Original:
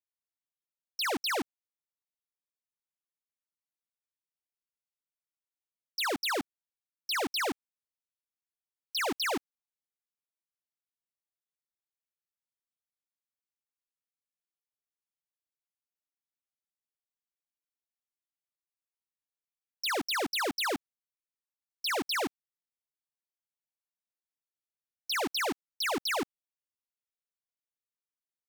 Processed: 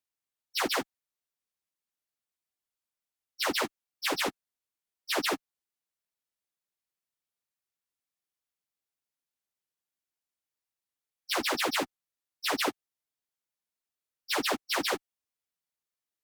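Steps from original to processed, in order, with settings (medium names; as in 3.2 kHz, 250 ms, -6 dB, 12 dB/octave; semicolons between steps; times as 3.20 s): Chebyshev shaper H 7 -42 dB, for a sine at -29.5 dBFS; plain phase-vocoder stretch 0.57×; trim +6.5 dB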